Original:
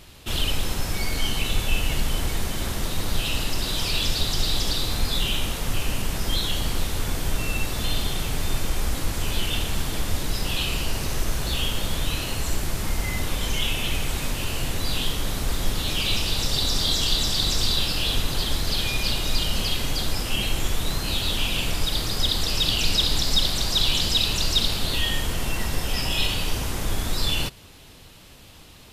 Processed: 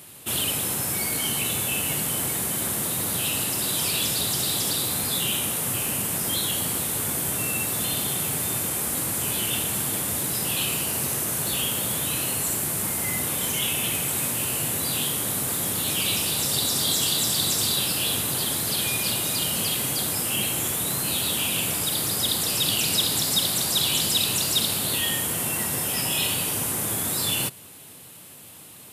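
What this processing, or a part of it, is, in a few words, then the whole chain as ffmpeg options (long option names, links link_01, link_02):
budget condenser microphone: -af "highpass=frequency=110:width=0.5412,highpass=frequency=110:width=1.3066,highshelf=frequency=7200:width_type=q:width=1.5:gain=10.5"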